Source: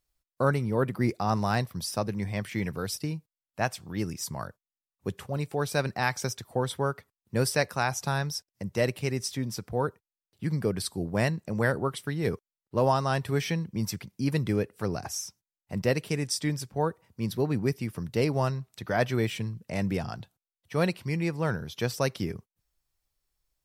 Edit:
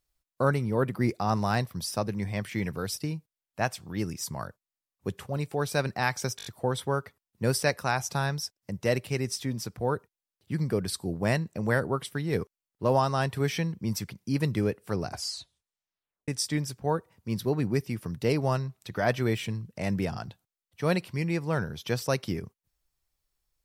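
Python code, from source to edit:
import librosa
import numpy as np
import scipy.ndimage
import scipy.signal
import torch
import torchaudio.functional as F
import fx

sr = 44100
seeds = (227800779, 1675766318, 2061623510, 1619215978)

y = fx.edit(x, sr, fx.stutter(start_s=6.37, slice_s=0.02, count=5),
    fx.tape_stop(start_s=15.0, length_s=1.2), tone=tone)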